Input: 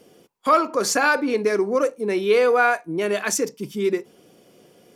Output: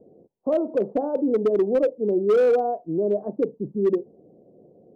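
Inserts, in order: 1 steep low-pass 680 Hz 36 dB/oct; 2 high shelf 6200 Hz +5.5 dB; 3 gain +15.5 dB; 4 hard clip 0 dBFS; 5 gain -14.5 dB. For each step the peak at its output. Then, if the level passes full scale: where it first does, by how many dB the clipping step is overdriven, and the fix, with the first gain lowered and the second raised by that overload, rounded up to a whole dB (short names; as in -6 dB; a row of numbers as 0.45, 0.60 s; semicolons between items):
-9.5, -9.5, +6.0, 0.0, -14.5 dBFS; step 3, 6.0 dB; step 3 +9.5 dB, step 5 -8.5 dB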